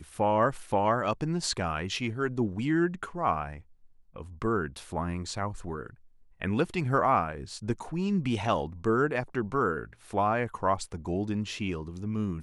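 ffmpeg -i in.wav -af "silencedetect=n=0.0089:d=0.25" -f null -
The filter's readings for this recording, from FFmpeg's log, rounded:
silence_start: 3.60
silence_end: 4.16 | silence_duration: 0.56
silence_start: 5.90
silence_end: 6.41 | silence_duration: 0.51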